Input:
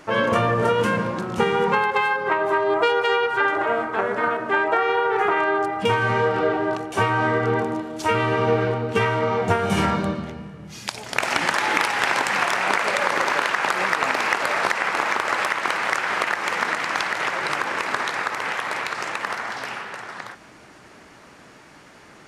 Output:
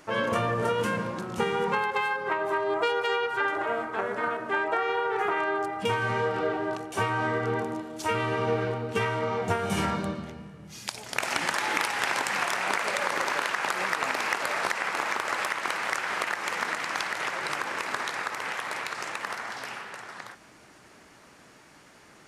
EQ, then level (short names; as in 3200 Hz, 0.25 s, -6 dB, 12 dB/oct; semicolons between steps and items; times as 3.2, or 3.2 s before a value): high shelf 6200 Hz +7.5 dB; -7.0 dB